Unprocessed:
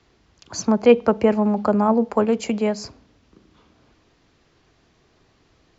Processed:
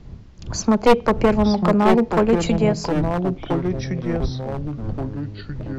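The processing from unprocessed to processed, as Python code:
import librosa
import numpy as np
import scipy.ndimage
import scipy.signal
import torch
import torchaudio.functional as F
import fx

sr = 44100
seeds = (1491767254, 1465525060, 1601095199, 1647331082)

y = np.minimum(x, 2.0 * 10.0 ** (-11.5 / 20.0) - x)
y = fx.dmg_wind(y, sr, seeds[0], corner_hz=110.0, level_db=-35.0)
y = fx.echo_pitch(y, sr, ms=767, semitones=-4, count=3, db_per_echo=-6.0)
y = y * 10.0 ** (2.0 / 20.0)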